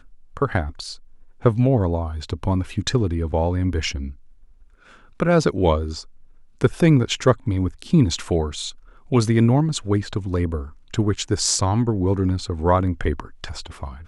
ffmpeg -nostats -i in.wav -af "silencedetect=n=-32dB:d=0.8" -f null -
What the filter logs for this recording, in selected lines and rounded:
silence_start: 4.12
silence_end: 5.20 | silence_duration: 1.08